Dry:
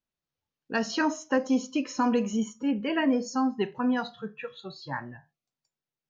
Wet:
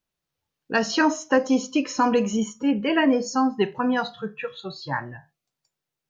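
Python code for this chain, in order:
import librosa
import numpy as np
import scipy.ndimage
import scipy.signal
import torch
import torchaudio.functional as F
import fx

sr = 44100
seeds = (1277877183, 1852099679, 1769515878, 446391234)

y = fx.peak_eq(x, sr, hz=240.0, db=-6.5, octaves=0.2)
y = y * librosa.db_to_amplitude(6.5)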